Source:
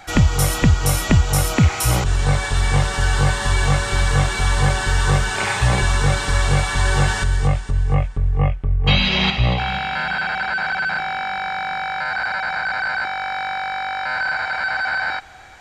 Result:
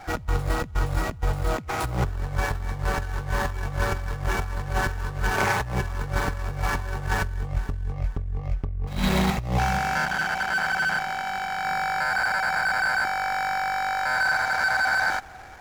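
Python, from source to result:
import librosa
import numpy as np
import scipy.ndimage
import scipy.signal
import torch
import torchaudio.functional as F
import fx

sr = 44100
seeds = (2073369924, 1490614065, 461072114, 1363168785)

y = scipy.ndimage.median_filter(x, 15, mode='constant')
y = fx.over_compress(y, sr, threshold_db=-21.0, ratio=-0.5)
y = fx.transformer_sat(y, sr, knee_hz=600.0, at=(10.05, 11.65))
y = y * librosa.db_to_amplitude(-2.5)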